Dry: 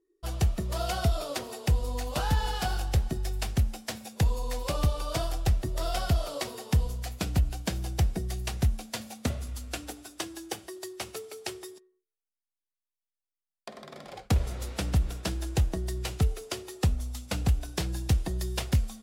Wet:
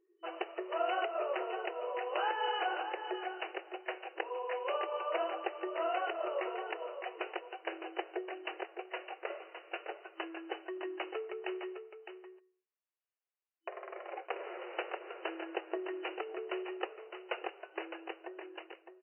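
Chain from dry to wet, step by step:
fade-out on the ending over 1.71 s
brickwall limiter −20 dBFS, peak gain reduction 6 dB
single-tap delay 610 ms −9 dB
brick-wall band-pass 330–3,000 Hz
level +1 dB

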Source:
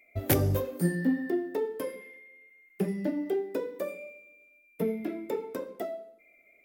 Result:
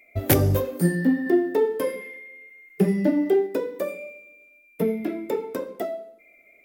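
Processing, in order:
0:01.26–0:03.47: harmonic and percussive parts rebalanced harmonic +4 dB
level +6 dB

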